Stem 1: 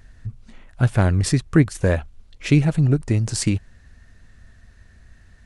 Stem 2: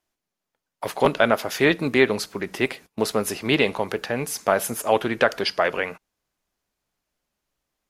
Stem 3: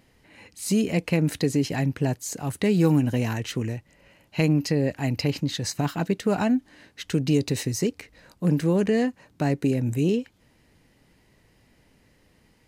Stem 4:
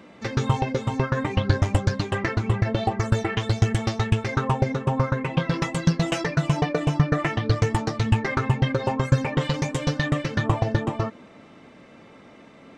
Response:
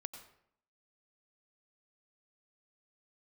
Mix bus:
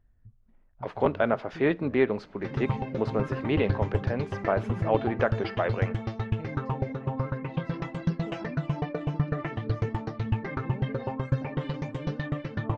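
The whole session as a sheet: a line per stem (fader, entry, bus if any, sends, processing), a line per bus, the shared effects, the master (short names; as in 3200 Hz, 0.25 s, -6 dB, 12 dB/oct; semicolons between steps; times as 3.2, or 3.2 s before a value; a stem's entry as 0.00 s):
-17.5 dB, 0.00 s, no send, high shelf 3100 Hz -11.5 dB; compressor 2:1, threshold -31 dBFS, peak gain reduction 12 dB
-3.0 dB, 0.00 s, no send, dry
-19.0 dB, 2.00 s, no send, dry
-6.5 dB, 2.20 s, no send, high shelf 2700 Hz +9 dB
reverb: off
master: tape spacing loss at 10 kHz 40 dB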